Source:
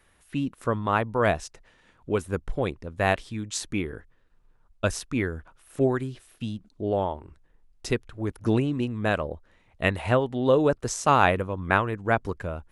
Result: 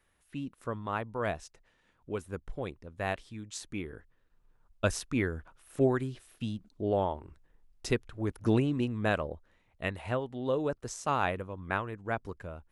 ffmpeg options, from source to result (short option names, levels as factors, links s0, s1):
-af "volume=0.708,afade=t=in:st=3.67:d=1.2:silence=0.446684,afade=t=out:st=8.94:d=0.92:silence=0.446684"